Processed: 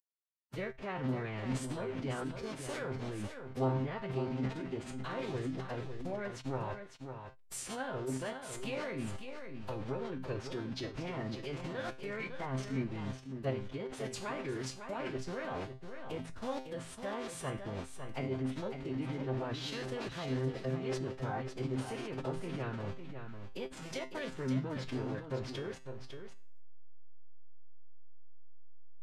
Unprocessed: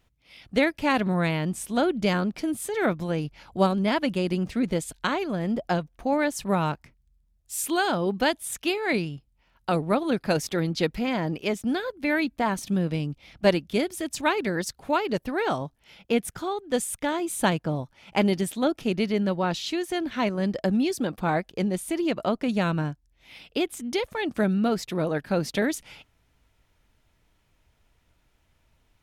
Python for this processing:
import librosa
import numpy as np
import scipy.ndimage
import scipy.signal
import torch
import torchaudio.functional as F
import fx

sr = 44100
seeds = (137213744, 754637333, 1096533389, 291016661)

p1 = fx.delta_hold(x, sr, step_db=-33.0)
p2 = fx.env_lowpass_down(p1, sr, base_hz=2400.0, full_db=-20.5)
p3 = fx.hum_notches(p2, sr, base_hz=60, count=4)
p4 = fx.over_compress(p3, sr, threshold_db=-30.0, ratio=-0.5)
p5 = p3 + (p4 * librosa.db_to_amplitude(2.0))
p6 = fx.comb_fb(p5, sr, f0_hz=190.0, decay_s=0.43, harmonics='all', damping=0.0, mix_pct=80)
p7 = fx.pitch_keep_formants(p6, sr, semitones=-6.5)
p8 = p7 + 10.0 ** (-8.0 / 20.0) * np.pad(p7, (int(553 * sr / 1000.0), 0))[:len(p7)]
y = p8 * librosa.db_to_amplitude(-6.0)